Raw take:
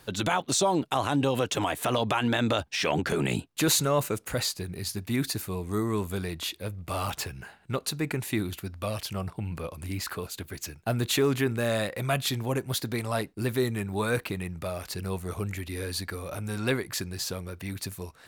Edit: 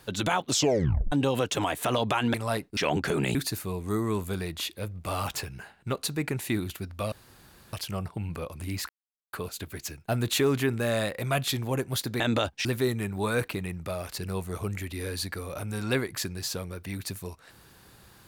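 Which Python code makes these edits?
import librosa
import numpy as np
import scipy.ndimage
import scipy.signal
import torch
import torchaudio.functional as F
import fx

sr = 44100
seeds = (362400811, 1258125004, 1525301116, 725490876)

y = fx.edit(x, sr, fx.tape_stop(start_s=0.5, length_s=0.62),
    fx.swap(start_s=2.34, length_s=0.45, other_s=12.98, other_length_s=0.43),
    fx.cut(start_s=3.37, length_s=1.81),
    fx.insert_room_tone(at_s=8.95, length_s=0.61),
    fx.insert_silence(at_s=10.11, length_s=0.44), tone=tone)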